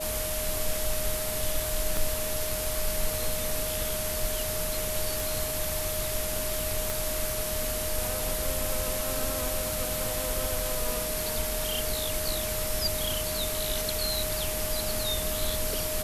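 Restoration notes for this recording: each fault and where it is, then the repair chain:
whistle 620 Hz −34 dBFS
0:01.97: click
0:05.20: click
0:06.90: click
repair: click removal
notch filter 620 Hz, Q 30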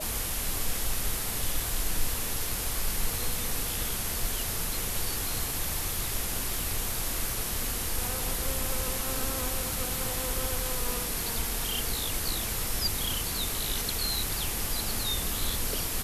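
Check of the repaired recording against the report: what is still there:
0:01.97: click
0:06.90: click

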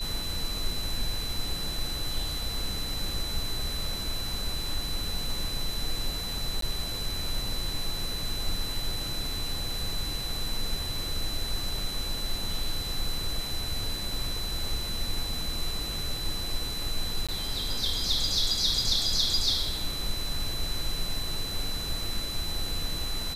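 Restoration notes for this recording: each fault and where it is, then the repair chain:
whistle 4,000 Hz −34 dBFS
0:06.61–0:06.62: drop-out 13 ms
0:17.27–0:17.29: drop-out 16 ms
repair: notch filter 4,000 Hz, Q 30
repair the gap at 0:06.61, 13 ms
repair the gap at 0:17.27, 16 ms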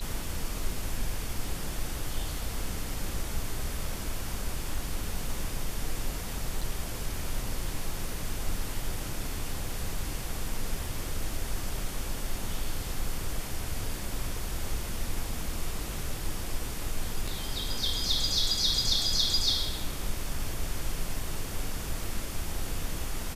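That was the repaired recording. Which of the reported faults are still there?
none of them is left

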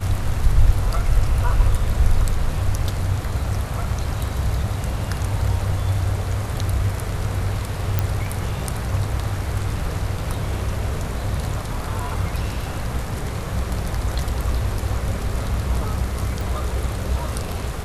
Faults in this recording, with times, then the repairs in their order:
0:07.99: click −6 dBFS
0:16.41: click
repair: click removal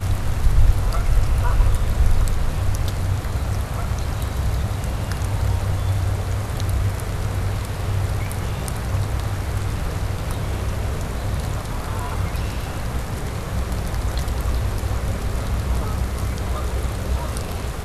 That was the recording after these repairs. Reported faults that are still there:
none of them is left

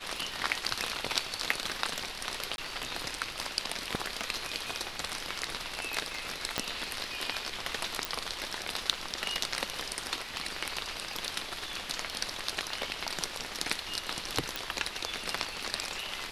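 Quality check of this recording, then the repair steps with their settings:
surface crackle 39 per second −44 dBFS
0:02.56–0:02.58: drop-out 21 ms
0:06.58: click −12 dBFS
0:08.05: click
0:14.56: click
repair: click removal
repair the gap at 0:02.56, 21 ms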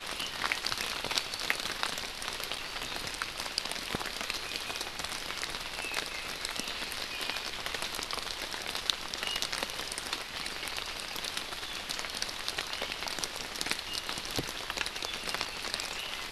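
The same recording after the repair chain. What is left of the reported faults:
0:06.58: click
0:14.56: click

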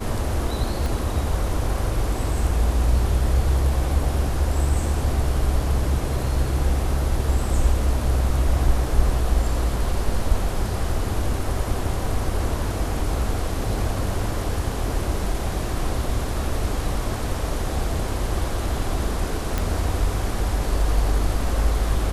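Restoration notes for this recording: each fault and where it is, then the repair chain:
0:00.86: click
0:19.58: click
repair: click removal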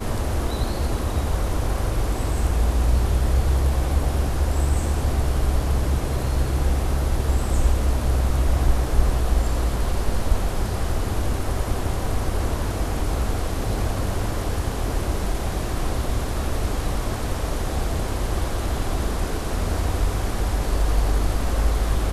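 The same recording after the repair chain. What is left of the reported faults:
0:00.86: click

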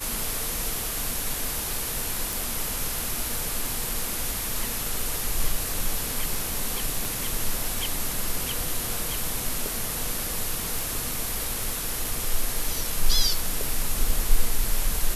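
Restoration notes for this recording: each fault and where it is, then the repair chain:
0:02.33: click
0:07.05: click
0:11.63: click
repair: click removal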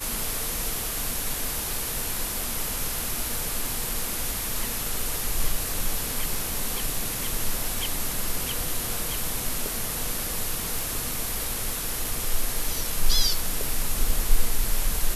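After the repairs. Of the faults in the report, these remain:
0:07.05: click

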